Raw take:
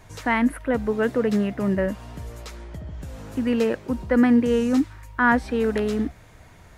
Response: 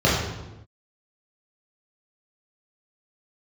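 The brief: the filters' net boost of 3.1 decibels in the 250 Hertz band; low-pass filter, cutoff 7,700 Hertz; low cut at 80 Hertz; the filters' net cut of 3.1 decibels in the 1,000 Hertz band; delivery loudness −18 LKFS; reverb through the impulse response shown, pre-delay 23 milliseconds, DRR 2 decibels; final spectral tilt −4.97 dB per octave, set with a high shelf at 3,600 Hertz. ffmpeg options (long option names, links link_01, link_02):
-filter_complex "[0:a]highpass=80,lowpass=7700,equalizer=frequency=250:width_type=o:gain=3.5,equalizer=frequency=1000:width_type=o:gain=-4.5,highshelf=frequency=3600:gain=4.5,asplit=2[link_01][link_02];[1:a]atrim=start_sample=2205,adelay=23[link_03];[link_02][link_03]afir=irnorm=-1:irlink=0,volume=-22.5dB[link_04];[link_01][link_04]amix=inputs=2:normalize=0"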